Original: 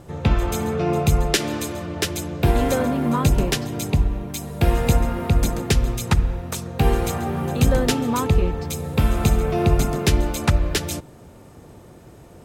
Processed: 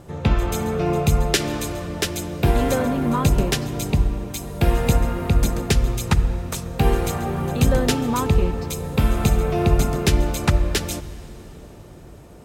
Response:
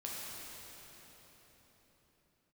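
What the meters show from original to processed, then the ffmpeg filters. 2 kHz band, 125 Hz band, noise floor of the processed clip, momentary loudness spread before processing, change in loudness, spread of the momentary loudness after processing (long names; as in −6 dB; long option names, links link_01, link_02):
0.0 dB, 0.0 dB, −42 dBFS, 6 LU, 0.0 dB, 8 LU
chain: -filter_complex "[0:a]asplit=2[link_01][link_02];[1:a]atrim=start_sample=2205,adelay=5[link_03];[link_02][link_03]afir=irnorm=-1:irlink=0,volume=-16.5dB[link_04];[link_01][link_04]amix=inputs=2:normalize=0"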